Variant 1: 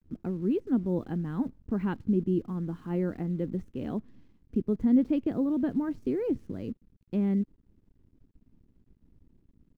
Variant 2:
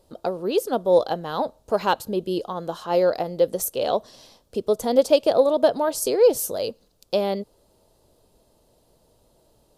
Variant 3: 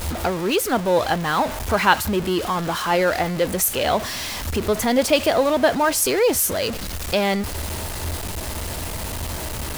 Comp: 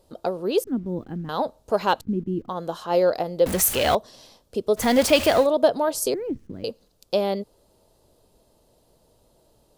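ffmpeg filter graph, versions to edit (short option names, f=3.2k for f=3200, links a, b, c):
-filter_complex "[0:a]asplit=3[a][b][c];[2:a]asplit=2[d][e];[1:a]asplit=6[f][g][h][i][j][k];[f]atrim=end=0.642[l];[a]atrim=start=0.638:end=1.292[m];[g]atrim=start=1.288:end=2.012[n];[b]atrim=start=2.008:end=2.492[o];[h]atrim=start=2.488:end=3.462[p];[d]atrim=start=3.458:end=3.952[q];[i]atrim=start=3.948:end=4.86[r];[e]atrim=start=4.76:end=5.48[s];[j]atrim=start=5.38:end=6.142[t];[c]atrim=start=6.138:end=6.642[u];[k]atrim=start=6.638[v];[l][m]acrossfade=d=0.004:c1=hsin:c2=hsin[w];[w][n]acrossfade=d=0.004:c1=hsin:c2=hsin[x];[x][o]acrossfade=d=0.004:c1=hsin:c2=hsin[y];[y][p]acrossfade=d=0.004:c1=hsin:c2=hsin[z];[z][q]acrossfade=d=0.004:c1=hsin:c2=hsin[aa];[aa][r]acrossfade=d=0.004:c1=hsin:c2=hsin[ab];[ab][s]acrossfade=d=0.1:c1=tri:c2=tri[ac];[ac][t]acrossfade=d=0.1:c1=tri:c2=tri[ad];[ad][u]acrossfade=d=0.004:c1=hsin:c2=hsin[ae];[ae][v]acrossfade=d=0.004:c1=hsin:c2=hsin"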